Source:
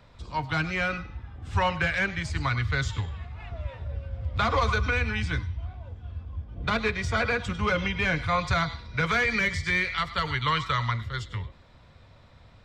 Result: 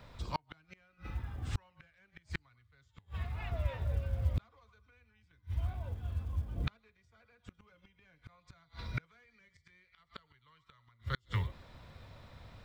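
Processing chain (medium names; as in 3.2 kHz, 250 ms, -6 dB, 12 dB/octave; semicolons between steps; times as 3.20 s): companded quantiser 8-bit; inverted gate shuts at -21 dBFS, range -40 dB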